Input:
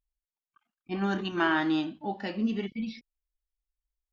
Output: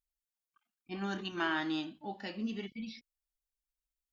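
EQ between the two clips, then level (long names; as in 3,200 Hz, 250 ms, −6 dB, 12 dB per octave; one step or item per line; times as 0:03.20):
high-shelf EQ 2,900 Hz +9.5 dB
−8.5 dB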